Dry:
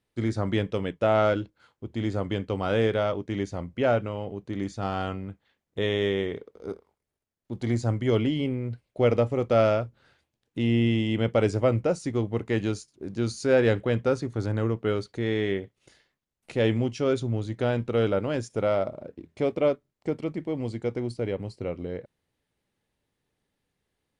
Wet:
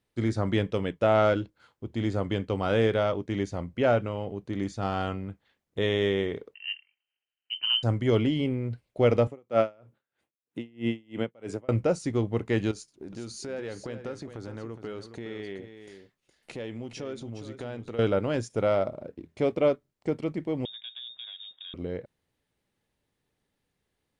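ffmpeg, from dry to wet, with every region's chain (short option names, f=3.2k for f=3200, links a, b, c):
-filter_complex "[0:a]asettb=1/sr,asplit=3[a][b][c];[a]atrim=end=6.544[d];[b]atrim=start=6.54:end=7.83,asetpts=PTS-STARTPTS,afade=t=in:d=0.004:c=qsin,afade=t=out:st=1.286:d=0.004:c=qsin,highpass=85,equalizer=f=2.1k:w=6.3:g=-10,lowpass=f=2.7k:t=q:w=0.5098,lowpass=f=2.7k:t=q:w=0.6013,lowpass=f=2.7k:t=q:w=0.9,lowpass=f=2.7k:t=q:w=2.563,afreqshift=-3200[e];[c]atrim=start=7.826[f];[d][e]acrossfade=d=0.004:c1=hsin:c2=qsin[g];[g][f]acrossfade=d=0.004:c1=qsin:c2=hsin,asettb=1/sr,asplit=3[h][i][j];[h]atrim=end=9.274[k];[i]atrim=start=9.27:end=11.69,asetpts=PTS-STARTPTS,afade=t=in:d=0.004:c=qsin,afade=t=out:st=2.416:d=0.004:c=qsin,highpass=170,equalizer=f=4.8k:t=o:w=0.85:g=-8,aeval=exprs='val(0)*pow(10,-33*(0.5-0.5*cos(2*PI*3.1*n/s))/20)':c=same[l];[j]atrim=start=11.686[m];[k][l]acrossfade=d=0.004:c1=hsin:c2=qsin[n];[n][m]acrossfade=d=0.004:c1=qsin:c2=hsin,asettb=1/sr,asplit=3[o][p][q];[o]atrim=end=12.714[r];[p]atrim=start=12.71:end=17.99,asetpts=PTS-STARTPTS,afade=t=in:d=0.004:c=qsin,afade=t=out:st=5.276:d=0.004:c=qsin,equalizer=f=95:t=o:w=1.1:g=-6,acompressor=threshold=-37dB:ratio=3:attack=3.2:release=140:knee=1:detection=peak,aecho=1:1:415:0.316,atrim=end_sample=232848[s];[q]atrim=start=17.986[t];[r][s]acrossfade=d=0.004:c1=hsin:c2=qsin[u];[u][t]acrossfade=d=0.004:c1=qsin:c2=hsin,asettb=1/sr,asplit=3[v][w][x];[v]atrim=end=20.654[y];[w]atrim=start=20.65:end=21.74,asetpts=PTS-STARTPTS,afade=t=in:d=0.004:c=qsin,afade=t=out:st=1.086:d=0.004:c=qsin,acompressor=threshold=-40dB:ratio=4:attack=3.2:release=140:knee=1:detection=peak,aeval=exprs='clip(val(0),-1,0.0168)':c=same,lowpass=f=3.2k:t=q:w=0.5098,lowpass=f=3.2k:t=q:w=0.6013,lowpass=f=3.2k:t=q:w=0.9,lowpass=f=3.2k:t=q:w=2.563,afreqshift=-3800[z];[x]atrim=start=21.736[aa];[y][z]acrossfade=d=0.004:c1=hsin:c2=qsin[ab];[ab][aa]acrossfade=d=0.004:c1=qsin:c2=hsin"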